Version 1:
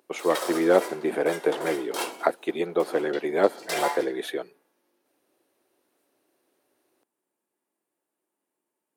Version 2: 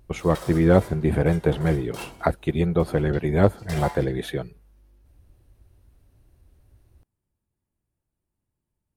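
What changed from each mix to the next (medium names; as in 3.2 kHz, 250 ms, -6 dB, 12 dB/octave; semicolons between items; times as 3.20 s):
background -7.5 dB; master: remove high-pass 310 Hz 24 dB/octave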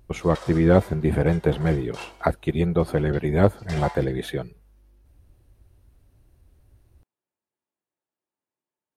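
background: add band-pass 440–6700 Hz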